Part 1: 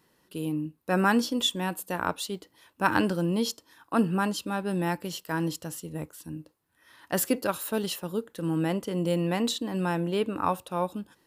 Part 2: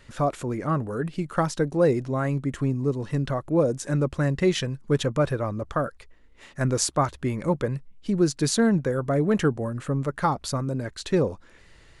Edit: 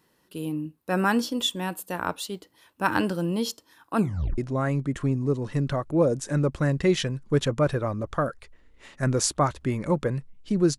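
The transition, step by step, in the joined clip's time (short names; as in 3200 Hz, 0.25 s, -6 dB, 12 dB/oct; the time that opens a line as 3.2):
part 1
3.97 tape stop 0.41 s
4.38 switch to part 2 from 1.96 s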